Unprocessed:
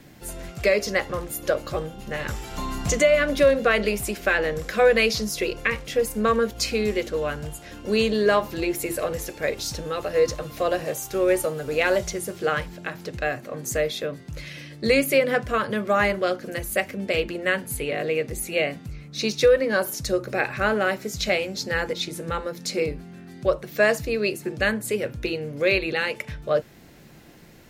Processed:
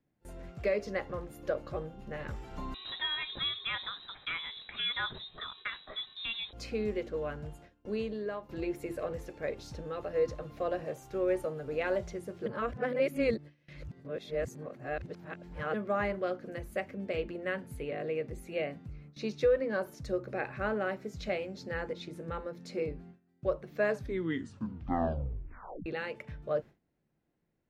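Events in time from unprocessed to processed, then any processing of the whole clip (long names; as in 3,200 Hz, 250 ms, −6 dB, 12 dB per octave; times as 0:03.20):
0:02.74–0:06.53: voice inversion scrambler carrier 3,900 Hz
0:07.59–0:08.49: fade out, to −13 dB
0:12.46–0:15.74: reverse
0:23.82: tape stop 2.04 s
whole clip: low-pass filter 1,200 Hz 6 dB per octave; noise gate with hold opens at −32 dBFS; level −8.5 dB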